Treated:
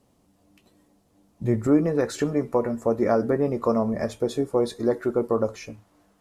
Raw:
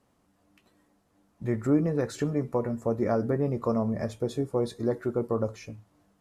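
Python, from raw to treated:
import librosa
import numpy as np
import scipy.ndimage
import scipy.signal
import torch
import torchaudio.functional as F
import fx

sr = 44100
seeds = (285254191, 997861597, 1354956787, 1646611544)

y = fx.peak_eq(x, sr, hz=fx.steps((0.0, 1500.0), (1.67, 120.0)), db=-8.5, octaves=1.3)
y = y * librosa.db_to_amplitude(6.0)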